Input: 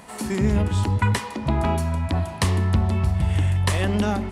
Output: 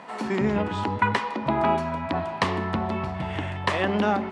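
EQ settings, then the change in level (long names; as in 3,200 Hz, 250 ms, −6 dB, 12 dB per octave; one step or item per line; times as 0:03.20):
high-pass filter 200 Hz 12 dB per octave
low-pass filter 3,700 Hz 12 dB per octave
parametric band 1,000 Hz +4.5 dB 1.9 octaves
0.0 dB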